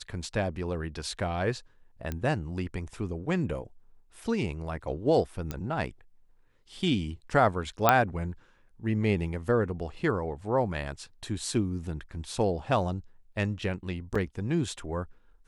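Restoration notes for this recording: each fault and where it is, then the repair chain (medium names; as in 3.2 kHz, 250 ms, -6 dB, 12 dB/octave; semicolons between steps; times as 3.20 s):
2.12 s: pop -19 dBFS
5.51 s: pop -19 dBFS
7.89 s: pop -5 dBFS
14.15 s: dropout 4.9 ms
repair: de-click; interpolate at 14.15 s, 4.9 ms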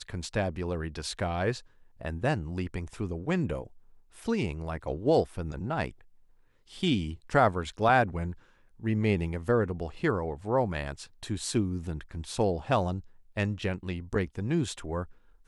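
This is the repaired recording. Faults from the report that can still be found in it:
2.12 s: pop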